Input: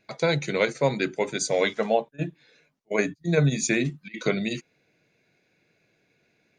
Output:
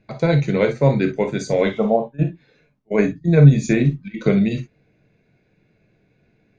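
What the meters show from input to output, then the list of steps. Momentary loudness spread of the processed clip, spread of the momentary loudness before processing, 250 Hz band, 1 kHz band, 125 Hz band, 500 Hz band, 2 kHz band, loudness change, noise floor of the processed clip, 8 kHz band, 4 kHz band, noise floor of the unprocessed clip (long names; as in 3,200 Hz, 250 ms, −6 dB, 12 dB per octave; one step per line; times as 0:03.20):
11 LU, 9 LU, +10.0 dB, +3.0 dB, +12.5 dB, +5.5 dB, 0.0 dB, +7.5 dB, −63 dBFS, can't be measured, −3.5 dB, −70 dBFS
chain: healed spectral selection 0:01.76–0:01.98, 1,400–4,400 Hz both
RIAA equalisation playback
reverb whose tail is shaped and stops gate 80 ms flat, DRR 5 dB
level +1.5 dB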